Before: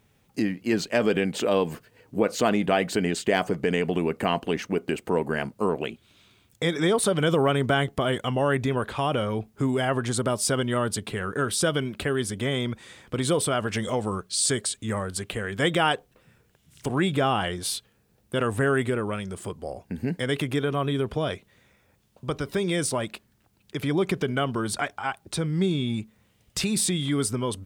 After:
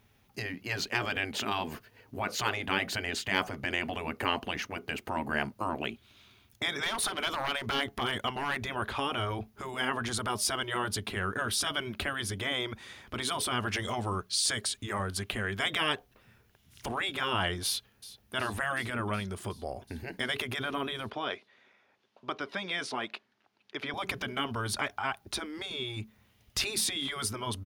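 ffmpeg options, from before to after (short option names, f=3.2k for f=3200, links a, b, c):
-filter_complex "[0:a]asettb=1/sr,asplit=3[a][b][c];[a]atrim=end=6.824[d];[b]atrim=start=6.82:end=8.62,asetpts=PTS-STARTPTS,afade=t=in:d=0.004:c=qsin,afade=t=out:st=1.796:d=0.004:c=qsin,asoftclip=type=hard:threshold=-17.5dB[e];[c]atrim=start=8.616[f];[d][e]acrossfade=d=0.004:c1=hsin:c2=qsin[g];[g][f]acrossfade=d=0.004:c1=qsin:c2=hsin,asplit=2[h][i];[i]afade=t=in:st=17.65:d=0.01,afade=t=out:st=18.35:d=0.01,aecho=0:1:370|740|1110|1480|1850|2220|2590|2960|3330|3700:0.149624|0.112218|0.0841633|0.0631224|0.0473418|0.0355064|0.0266298|0.0199723|0.0149793|0.0112344[j];[h][j]amix=inputs=2:normalize=0,asettb=1/sr,asplit=3[k][l][m];[k]atrim=end=21.104[n];[l]atrim=start=21.1:end=23.94,asetpts=PTS-STARTPTS,afade=t=in:d=0.004:c=qsin,afade=t=out:st=2.836:d=0.004:c=qsin,highpass=340,lowpass=4.3k[o];[m]atrim=start=23.936[p];[n][o]acrossfade=d=0.004:c1=hsin:c2=qsin[q];[q][p]acrossfade=d=0.004:c1=qsin:c2=hsin,afftfilt=real='re*lt(hypot(re,im),0.251)':imag='im*lt(hypot(re,im),0.251)':win_size=1024:overlap=0.75,equalizer=f=160:t=o:w=0.33:g=-11,equalizer=f=315:t=o:w=0.33:g=-4,equalizer=f=500:t=o:w=0.33:g=-7,equalizer=f=8k:t=o:w=0.33:g=-10"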